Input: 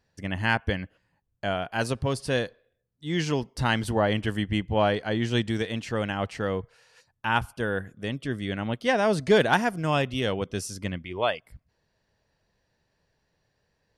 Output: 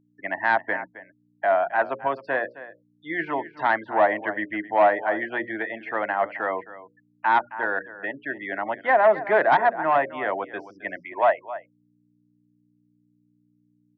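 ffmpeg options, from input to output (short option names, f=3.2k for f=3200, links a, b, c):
-filter_complex "[0:a]bandreject=f=60:t=h:w=6,bandreject=f=120:t=h:w=6,bandreject=f=180:t=h:w=6,bandreject=f=240:t=h:w=6,bandreject=f=300:t=h:w=6,bandreject=f=360:t=h:w=6,bandreject=f=420:t=h:w=6,bandreject=f=480:t=h:w=6,bandreject=f=540:t=h:w=6,bandreject=f=600:t=h:w=6,afftfilt=real='re*gte(hypot(re,im),0.0141)':imag='im*gte(hypot(re,im),0.0141)':win_size=1024:overlap=0.75,acrossover=split=510 2800:gain=0.0631 1 0.141[a][b][c];[a][b][c]amix=inputs=3:normalize=0,acrossover=split=370|1800[d][e][f];[f]acompressor=threshold=-50dB:ratio=10[g];[d][e][g]amix=inputs=3:normalize=0,aeval=exprs='val(0)+0.000398*(sin(2*PI*60*n/s)+sin(2*PI*2*60*n/s)/2+sin(2*PI*3*60*n/s)/3+sin(2*PI*4*60*n/s)/4+sin(2*PI*5*60*n/s)/5)':c=same,asplit=2[h][i];[i]aecho=0:1:266:0.158[j];[h][j]amix=inputs=2:normalize=0,aeval=exprs='0.251*(cos(1*acos(clip(val(0)/0.251,-1,1)))-cos(1*PI/2))+0.0631*(cos(5*acos(clip(val(0)/0.251,-1,1)))-cos(5*PI/2))+0.00178*(cos(7*acos(clip(val(0)/0.251,-1,1)))-cos(7*PI/2))':c=same,highpass=f=130:w=0.5412,highpass=f=130:w=1.3066,equalizer=f=310:t=q:w=4:g=10,equalizer=f=470:t=q:w=4:g=-6,equalizer=f=670:t=q:w=4:g=7,equalizer=f=950:t=q:w=4:g=4,equalizer=f=1.9k:t=q:w=4:g=9,equalizer=f=2.9k:t=q:w=4:g=-6,lowpass=f=3.6k:w=0.5412,lowpass=f=3.6k:w=1.3066"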